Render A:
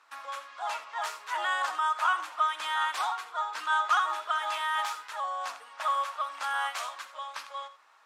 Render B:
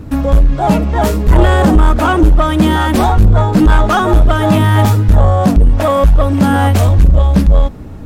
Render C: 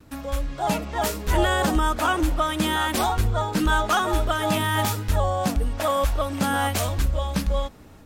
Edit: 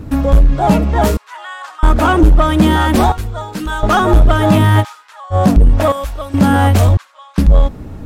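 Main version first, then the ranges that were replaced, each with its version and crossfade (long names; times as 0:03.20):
B
0:01.17–0:01.83: punch in from A
0:03.12–0:03.83: punch in from C
0:04.82–0:05.33: punch in from A, crossfade 0.06 s
0:05.92–0:06.34: punch in from C
0:06.97–0:07.38: punch in from A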